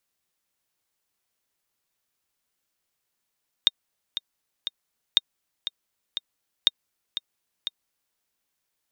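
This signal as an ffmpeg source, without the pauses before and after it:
ffmpeg -f lavfi -i "aevalsrc='pow(10,(-4-11.5*gte(mod(t,3*60/120),60/120))/20)*sin(2*PI*3680*mod(t,60/120))*exp(-6.91*mod(t,60/120)/0.03)':duration=4.5:sample_rate=44100" out.wav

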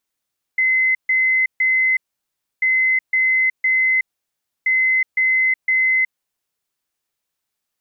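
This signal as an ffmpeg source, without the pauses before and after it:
ffmpeg -f lavfi -i "aevalsrc='0.211*sin(2*PI*2050*t)*clip(min(mod(mod(t,2.04),0.51),0.37-mod(mod(t,2.04),0.51))/0.005,0,1)*lt(mod(t,2.04),1.53)':duration=6.12:sample_rate=44100" out.wav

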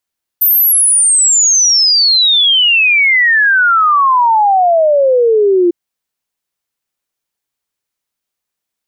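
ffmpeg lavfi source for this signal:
ffmpeg -f lavfi -i "aevalsrc='0.473*clip(min(t,5.3-t)/0.01,0,1)*sin(2*PI*14000*5.3/log(340/14000)*(exp(log(340/14000)*t/5.3)-1))':duration=5.3:sample_rate=44100" out.wav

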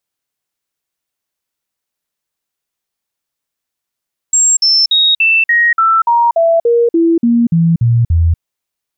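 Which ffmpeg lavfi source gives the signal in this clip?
ffmpeg -f lavfi -i "aevalsrc='0.447*clip(min(mod(t,0.29),0.24-mod(t,0.29))/0.005,0,1)*sin(2*PI*7530*pow(2,-floor(t/0.29)/2)*mod(t,0.29))':duration=4.06:sample_rate=44100" out.wav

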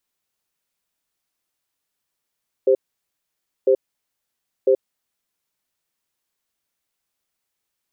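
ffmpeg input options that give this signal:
ffmpeg -f lavfi -i "aevalsrc='0.188*(sin(2*PI*395*t)+sin(2*PI*523*t))*clip(min(mod(t,1),0.08-mod(t,1))/0.005,0,1)':duration=2.76:sample_rate=44100" out.wav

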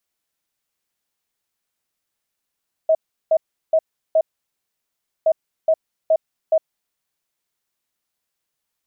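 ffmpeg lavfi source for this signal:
ffmpeg -f lavfi -i "aevalsrc='0.266*sin(2*PI*639*t)*clip(min(mod(mod(t,2.37),0.42),0.06-mod(mod(t,2.37),0.42))/0.005,0,1)*lt(mod(t,2.37),1.68)':duration=4.74:sample_rate=44100" out.wav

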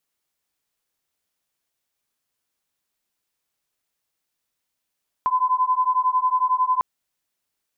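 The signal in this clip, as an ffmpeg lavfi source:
ffmpeg -f lavfi -i "aevalsrc='0.0944*(sin(2*PI*1010*t)+sin(2*PI*1021*t))':duration=1.55:sample_rate=44100" out.wav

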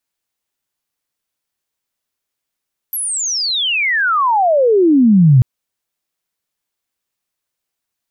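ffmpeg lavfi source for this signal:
ffmpeg -f lavfi -i "aevalsrc='pow(10,(-18+13.5*t/2.49)/20)*sin(2*PI*12000*2.49/log(120/12000)*(exp(log(120/12000)*t/2.49)-1))':duration=2.49:sample_rate=44100" out.wav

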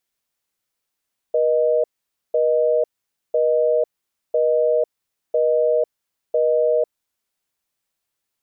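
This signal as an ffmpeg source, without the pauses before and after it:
ffmpeg -f lavfi -i "aevalsrc='0.133*(sin(2*PI*480*t)+sin(2*PI*620*t))*clip(min(mod(t,1),0.5-mod(t,1))/0.005,0,1)':duration=5.73:sample_rate=44100" out.wav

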